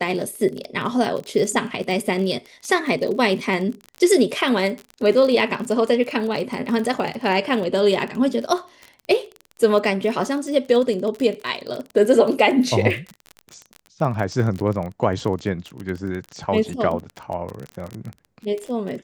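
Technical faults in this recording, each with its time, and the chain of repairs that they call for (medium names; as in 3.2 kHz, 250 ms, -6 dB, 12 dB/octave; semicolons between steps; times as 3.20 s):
crackle 29 per s -26 dBFS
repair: de-click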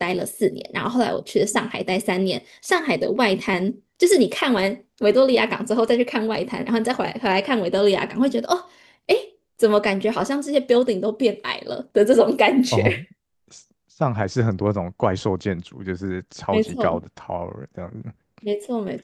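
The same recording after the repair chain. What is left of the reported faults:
nothing left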